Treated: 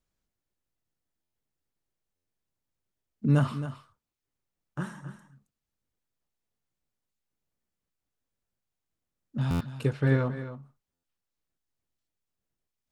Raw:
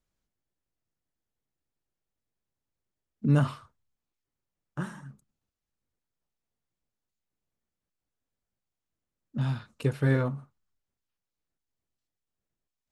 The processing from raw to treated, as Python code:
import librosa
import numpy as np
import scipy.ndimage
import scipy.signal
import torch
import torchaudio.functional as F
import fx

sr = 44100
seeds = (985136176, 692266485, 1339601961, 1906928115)

y = fx.lowpass(x, sr, hz=5600.0, slope=12, at=(9.91, 10.36))
y = y + 10.0 ** (-12.0 / 20.0) * np.pad(y, (int(269 * sr / 1000.0), 0))[:len(y)]
y = fx.buffer_glitch(y, sr, at_s=(1.22, 2.15, 9.5, 10.93), block=512, repeats=8)